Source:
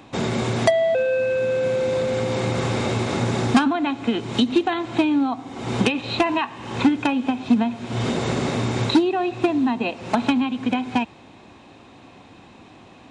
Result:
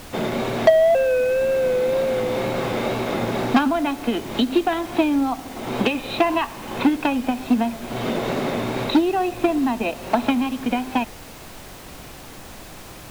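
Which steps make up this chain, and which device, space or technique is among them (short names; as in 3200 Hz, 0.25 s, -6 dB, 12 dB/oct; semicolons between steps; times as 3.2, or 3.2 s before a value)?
horn gramophone (BPF 180–4000 Hz; bell 620 Hz +5 dB 0.4 oct; wow and flutter; pink noise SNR 18 dB)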